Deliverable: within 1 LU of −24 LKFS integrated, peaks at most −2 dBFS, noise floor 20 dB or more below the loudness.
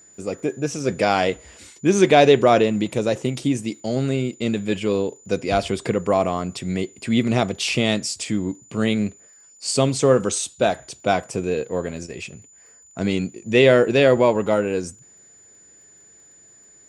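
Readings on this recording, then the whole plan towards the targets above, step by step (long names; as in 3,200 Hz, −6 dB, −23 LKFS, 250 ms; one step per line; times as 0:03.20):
crackle rate 21 per second; interfering tone 7,000 Hz; level of the tone −48 dBFS; integrated loudness −21.0 LKFS; sample peak −1.0 dBFS; target loudness −24.0 LKFS
→ click removal
notch filter 7,000 Hz, Q 30
level −3 dB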